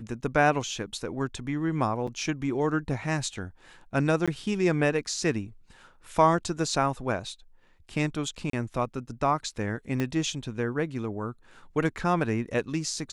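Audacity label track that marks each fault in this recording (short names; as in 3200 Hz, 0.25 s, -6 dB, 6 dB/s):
2.070000	2.080000	gap 5 ms
4.260000	4.280000	gap 16 ms
8.500000	8.530000	gap 33 ms
10.000000	10.000000	pop -16 dBFS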